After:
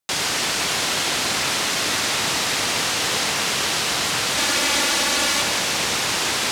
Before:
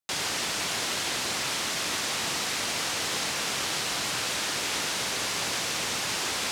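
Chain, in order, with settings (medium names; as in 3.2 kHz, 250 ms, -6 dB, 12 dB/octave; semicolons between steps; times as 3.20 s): 4.37–5.42 s: comb 3.5 ms, depth 82%; bucket-brigade echo 128 ms, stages 4096, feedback 84%, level -11.5 dB; trim +7 dB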